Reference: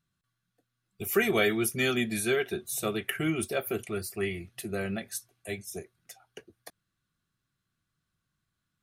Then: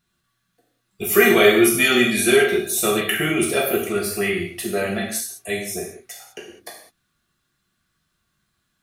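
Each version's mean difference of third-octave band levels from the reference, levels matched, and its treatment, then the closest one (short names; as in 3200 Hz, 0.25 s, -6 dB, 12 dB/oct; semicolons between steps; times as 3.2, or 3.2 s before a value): 6.5 dB: low shelf 190 Hz -4.5 dB; non-linear reverb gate 0.23 s falling, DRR -3 dB; gain +7.5 dB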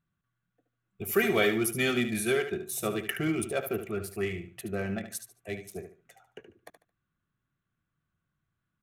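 4.0 dB: Wiener smoothing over 9 samples; feedback echo 73 ms, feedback 25%, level -9.5 dB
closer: second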